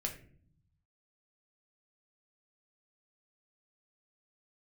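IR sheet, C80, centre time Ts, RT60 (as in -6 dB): 14.0 dB, 15 ms, 0.50 s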